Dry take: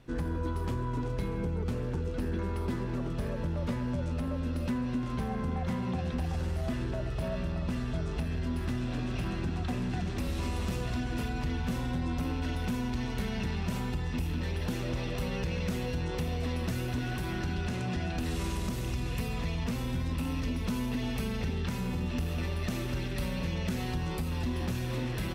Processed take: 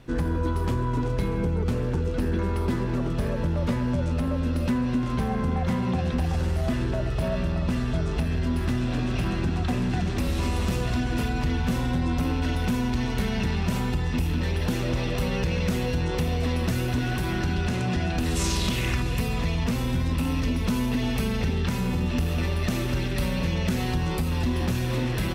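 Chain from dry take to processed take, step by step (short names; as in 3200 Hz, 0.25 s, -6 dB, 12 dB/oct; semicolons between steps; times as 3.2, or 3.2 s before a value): 18.35–19.01 bell 8600 Hz -> 1400 Hz +12 dB 1.1 oct; gain +7 dB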